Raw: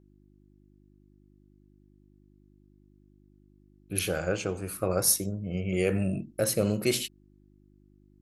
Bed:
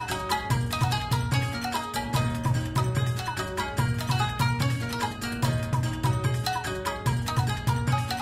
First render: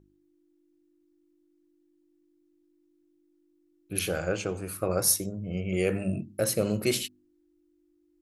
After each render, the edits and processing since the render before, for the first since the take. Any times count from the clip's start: de-hum 50 Hz, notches 5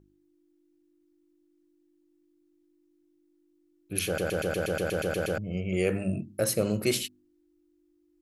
4.06 stutter in place 0.12 s, 11 plays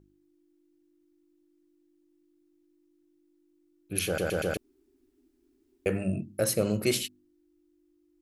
4.57–5.86 room tone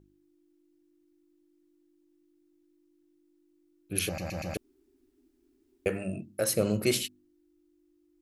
4.09–4.55 fixed phaser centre 2200 Hz, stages 8; 5.88–6.54 low shelf 260 Hz -8.5 dB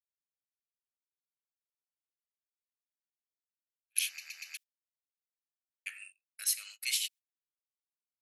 inverse Chebyshev high-pass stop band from 350 Hz, stop band 80 dB; gate -50 dBFS, range -29 dB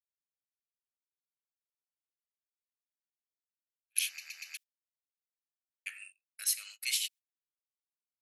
nothing audible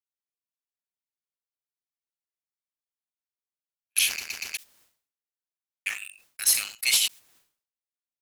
sample leveller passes 3; sustainer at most 120 dB/s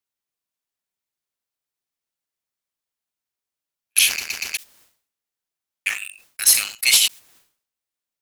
gain +7 dB

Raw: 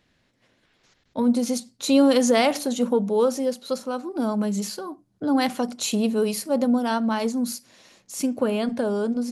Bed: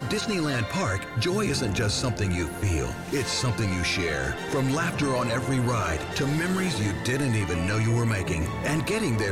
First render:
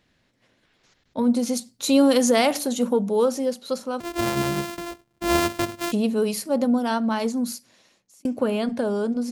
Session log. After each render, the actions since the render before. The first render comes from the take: 1.57–3.26 high shelf 11000 Hz +10 dB; 4–5.92 sample sorter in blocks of 128 samples; 7.41–8.25 fade out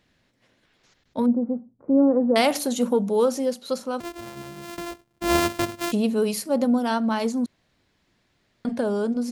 1.26–2.36 Gaussian blur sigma 9.3 samples; 4.03–4.77 dip -14.5 dB, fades 0.17 s; 7.46–8.65 room tone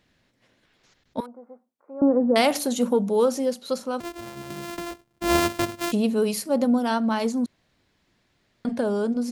1.2–2.02 HPF 1100 Hz; 4.5–4.91 three-band squash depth 70%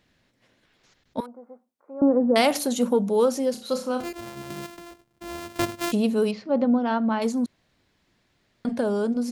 3.51–4.13 flutter echo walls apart 5.4 m, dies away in 0.31 s; 4.66–5.56 compressor 2:1, threshold -46 dBFS; 6.31–7.22 Gaussian blur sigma 2.5 samples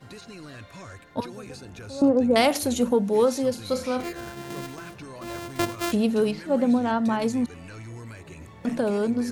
add bed -16 dB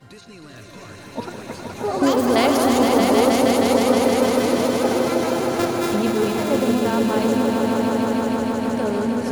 swelling echo 0.157 s, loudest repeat 5, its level -5 dB; echoes that change speed 0.49 s, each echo +7 st, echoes 2, each echo -6 dB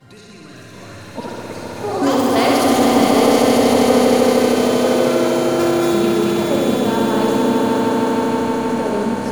flutter echo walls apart 11 m, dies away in 1.5 s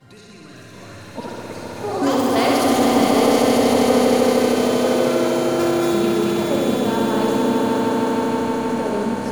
gain -2.5 dB

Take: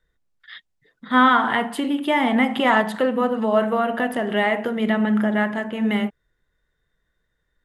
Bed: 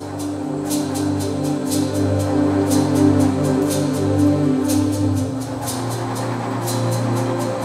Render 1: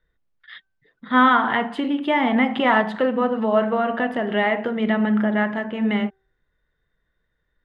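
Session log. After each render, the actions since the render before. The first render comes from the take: LPF 3700 Hz 12 dB/oct; de-hum 386.2 Hz, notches 4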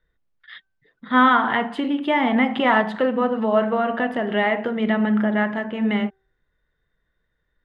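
nothing audible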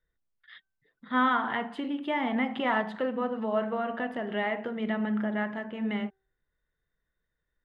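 gain -9.5 dB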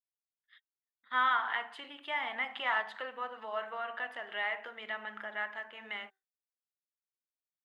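expander -41 dBFS; HPF 1100 Hz 12 dB/oct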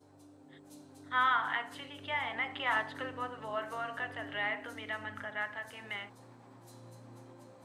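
add bed -33 dB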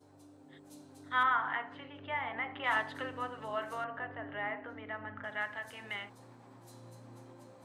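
1.23–2.64 LPF 2100 Hz; 3.84–5.24 LPF 1600 Hz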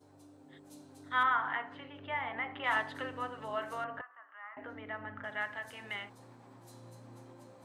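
4.01–4.57 ladder band-pass 1300 Hz, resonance 70%

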